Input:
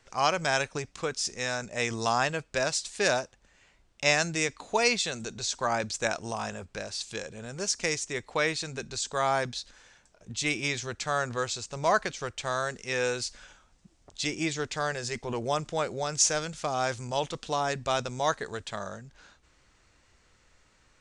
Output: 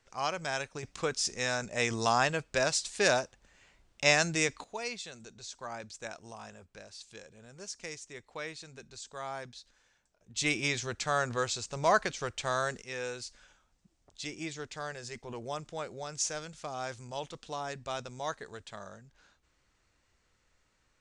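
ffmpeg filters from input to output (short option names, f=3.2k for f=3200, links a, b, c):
-af "asetnsamples=n=441:p=0,asendcmd='0.83 volume volume -0.5dB;4.64 volume volume -13dB;10.36 volume volume -1dB;12.82 volume volume -9dB',volume=-7.5dB"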